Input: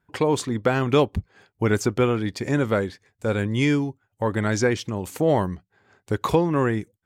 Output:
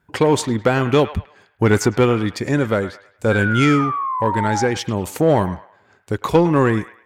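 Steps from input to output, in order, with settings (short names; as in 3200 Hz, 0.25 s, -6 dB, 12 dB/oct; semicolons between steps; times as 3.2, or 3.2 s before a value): tremolo saw down 0.63 Hz, depth 50%; painted sound fall, 3.31–4.66, 790–1600 Hz -30 dBFS; added harmonics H 4 -20 dB, 6 -24 dB, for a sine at -8 dBFS; in parallel at -9.5 dB: hard clip -18.5 dBFS, distortion -13 dB; on the sum: band-limited delay 0.105 s, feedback 34%, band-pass 1500 Hz, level -11 dB; gain +4.5 dB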